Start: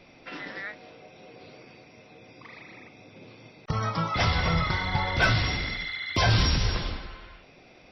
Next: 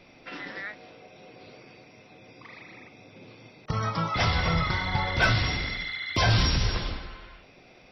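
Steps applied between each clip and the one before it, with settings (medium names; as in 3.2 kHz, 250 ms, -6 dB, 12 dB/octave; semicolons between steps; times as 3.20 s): de-hum 77.3 Hz, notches 14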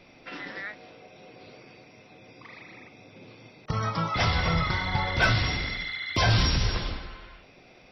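no audible change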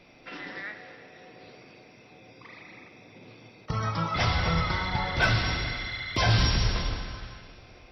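plate-style reverb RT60 2.6 s, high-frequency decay 0.9×, DRR 7 dB; trim -1.5 dB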